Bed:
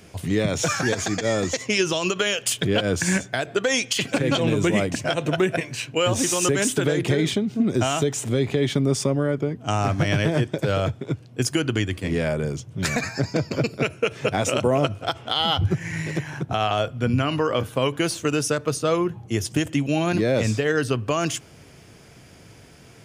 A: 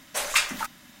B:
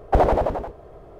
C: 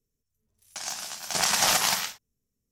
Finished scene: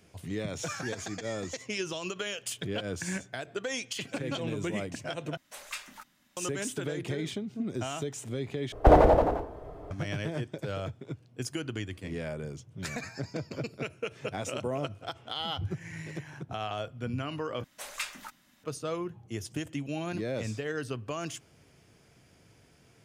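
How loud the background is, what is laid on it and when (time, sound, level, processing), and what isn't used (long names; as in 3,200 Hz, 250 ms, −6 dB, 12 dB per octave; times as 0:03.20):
bed −12.5 dB
0:05.37: overwrite with A −17 dB
0:08.72: overwrite with B −1 dB + feedback delay network reverb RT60 0.68 s, low-frequency decay 1.05×, high-frequency decay 0.4×, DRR 7.5 dB
0:17.64: overwrite with A −13.5 dB
not used: C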